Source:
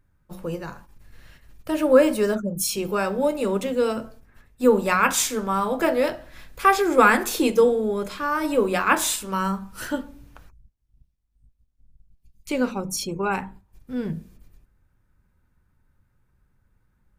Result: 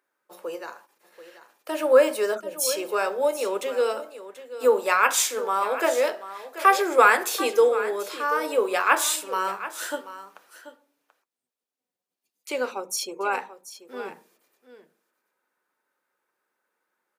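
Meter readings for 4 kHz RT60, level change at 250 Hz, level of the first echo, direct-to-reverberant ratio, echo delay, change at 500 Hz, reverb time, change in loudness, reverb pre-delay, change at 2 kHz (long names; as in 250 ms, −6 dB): no reverb audible, −11.5 dB, −14.0 dB, no reverb audible, 735 ms, −1.0 dB, no reverb audible, −0.5 dB, no reverb audible, 0.0 dB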